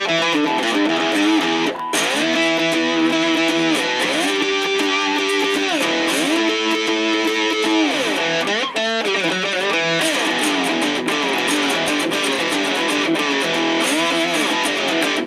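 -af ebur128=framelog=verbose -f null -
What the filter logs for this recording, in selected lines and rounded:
Integrated loudness:
  I:         -17.4 LUFS
  Threshold: -27.4 LUFS
Loudness range:
  LRA:         0.9 LU
  Threshold: -37.4 LUFS
  LRA low:   -17.9 LUFS
  LRA high:  -17.0 LUFS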